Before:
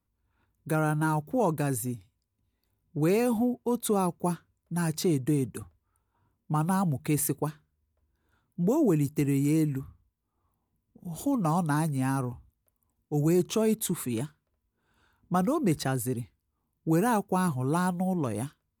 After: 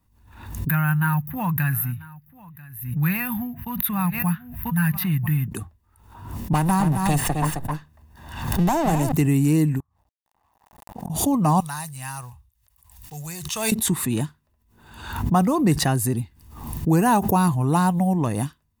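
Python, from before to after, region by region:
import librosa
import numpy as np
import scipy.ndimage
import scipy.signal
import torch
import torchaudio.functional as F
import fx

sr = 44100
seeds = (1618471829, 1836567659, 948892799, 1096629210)

y = fx.chain(x, sr, fx.curve_eq(hz=(180.0, 410.0, 1600.0, 2600.0, 7600.0, 13000.0), db=(0, -28, 6, 2, -25, 11)),
    fx.echo_single(ms=990, db=-21.0), at=(0.69, 5.48))
y = fx.chain(y, sr, fx.lower_of_two(delay_ms=1.1),
    fx.echo_single(ms=264, db=-8.0),
    fx.band_squash(depth_pct=70), at=(6.53, 9.12))
y = fx.chain(y, sr, fx.law_mismatch(coded='A'),
    fx.peak_eq(hz=850.0, db=15.0, octaves=1.2),
    fx.gate_flip(shuts_db=-37.0, range_db=-34), at=(9.8, 11.1))
y = fx.chain(y, sr, fx.block_float(bits=7),
    fx.tone_stack(knobs='10-0-10'), at=(11.6, 13.72))
y = y + 0.39 * np.pad(y, (int(1.1 * sr / 1000.0), 0))[:len(y)]
y = fx.pre_swell(y, sr, db_per_s=69.0)
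y = y * librosa.db_to_amplitude(6.5)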